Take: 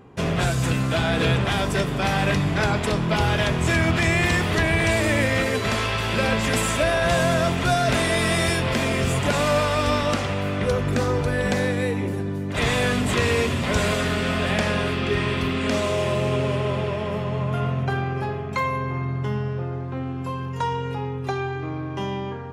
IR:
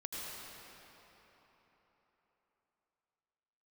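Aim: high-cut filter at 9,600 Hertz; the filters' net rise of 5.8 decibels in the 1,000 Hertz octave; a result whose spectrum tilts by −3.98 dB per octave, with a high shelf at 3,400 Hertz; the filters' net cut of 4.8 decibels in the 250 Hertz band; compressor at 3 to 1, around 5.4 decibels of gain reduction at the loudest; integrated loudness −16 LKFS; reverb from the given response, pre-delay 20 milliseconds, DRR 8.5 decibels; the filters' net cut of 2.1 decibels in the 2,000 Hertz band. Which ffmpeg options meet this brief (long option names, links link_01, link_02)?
-filter_complex "[0:a]lowpass=9600,equalizer=frequency=250:width_type=o:gain=-7.5,equalizer=frequency=1000:width_type=o:gain=9,equalizer=frequency=2000:width_type=o:gain=-8.5,highshelf=frequency=3400:gain=9,acompressor=threshold=-22dB:ratio=3,asplit=2[link_01][link_02];[1:a]atrim=start_sample=2205,adelay=20[link_03];[link_02][link_03]afir=irnorm=-1:irlink=0,volume=-9.5dB[link_04];[link_01][link_04]amix=inputs=2:normalize=0,volume=8.5dB"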